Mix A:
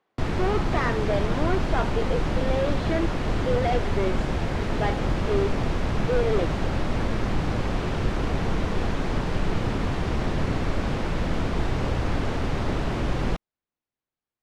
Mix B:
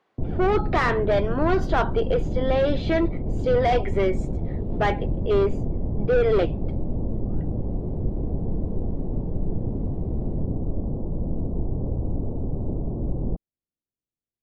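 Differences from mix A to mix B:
speech +5.0 dB
background: add Gaussian smoothing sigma 15 samples

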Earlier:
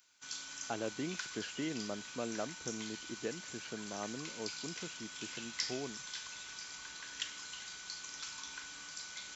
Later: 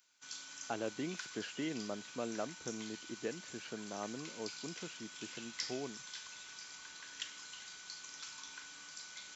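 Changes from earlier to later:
background −3.5 dB
master: add low-shelf EQ 67 Hz −11.5 dB

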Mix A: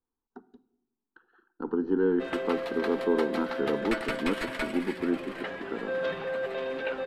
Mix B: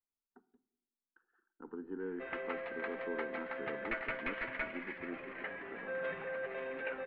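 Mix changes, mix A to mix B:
speech −7.0 dB
master: add transistor ladder low-pass 2,500 Hz, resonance 50%

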